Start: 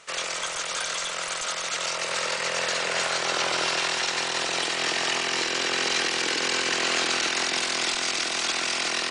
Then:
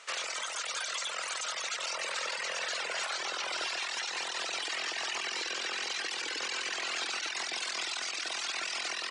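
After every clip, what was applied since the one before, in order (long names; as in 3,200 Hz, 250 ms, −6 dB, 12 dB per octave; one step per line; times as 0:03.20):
meter weighting curve A
reverb reduction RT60 1.8 s
brickwall limiter −23.5 dBFS, peak gain reduction 9.5 dB
level −1.5 dB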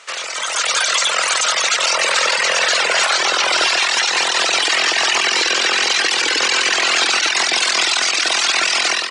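automatic gain control gain up to 10 dB
level +9 dB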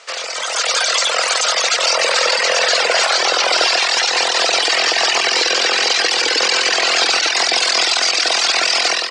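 loudspeaker in its box 140–9,100 Hz, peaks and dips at 490 Hz +7 dB, 710 Hz +6 dB, 4,800 Hz +6 dB
level −1 dB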